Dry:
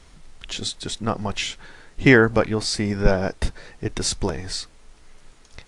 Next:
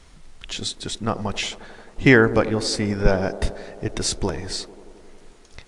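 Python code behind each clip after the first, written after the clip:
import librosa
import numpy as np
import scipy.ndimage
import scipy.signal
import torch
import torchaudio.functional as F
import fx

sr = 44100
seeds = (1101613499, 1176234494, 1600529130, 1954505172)

y = fx.echo_wet_bandpass(x, sr, ms=89, feedback_pct=82, hz=470.0, wet_db=-14.0)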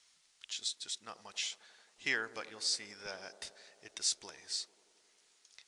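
y = fx.bandpass_q(x, sr, hz=6000.0, q=0.84)
y = y * librosa.db_to_amplitude(-7.0)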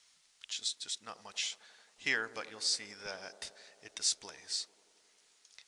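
y = fx.notch(x, sr, hz=360.0, q=12.0)
y = y * librosa.db_to_amplitude(1.5)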